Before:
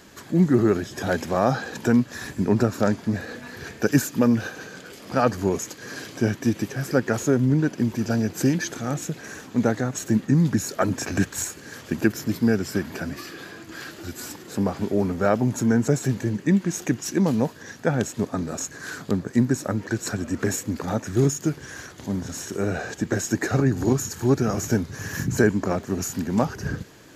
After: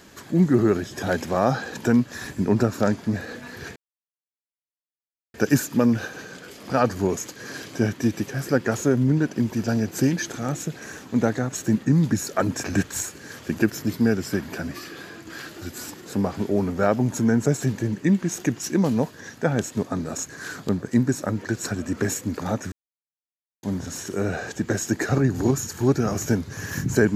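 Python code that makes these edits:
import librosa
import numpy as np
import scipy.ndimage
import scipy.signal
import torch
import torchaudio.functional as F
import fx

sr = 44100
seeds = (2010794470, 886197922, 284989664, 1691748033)

y = fx.edit(x, sr, fx.insert_silence(at_s=3.76, length_s=1.58),
    fx.silence(start_s=21.14, length_s=0.91), tone=tone)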